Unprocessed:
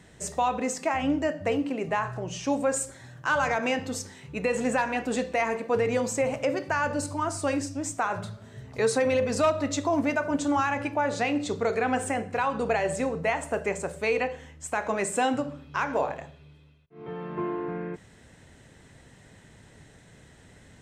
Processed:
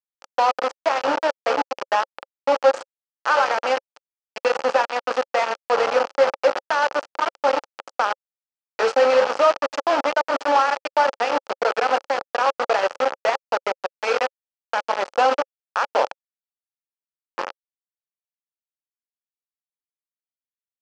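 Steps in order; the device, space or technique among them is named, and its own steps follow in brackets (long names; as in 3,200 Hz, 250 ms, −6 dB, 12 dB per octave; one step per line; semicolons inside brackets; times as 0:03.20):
hand-held game console (bit reduction 4 bits; loudspeaker in its box 450–5,000 Hz, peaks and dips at 540 Hz +9 dB, 840 Hz +7 dB, 1,300 Hz +6 dB, 2,100 Hz −4 dB, 3,700 Hz −8 dB)
level +2 dB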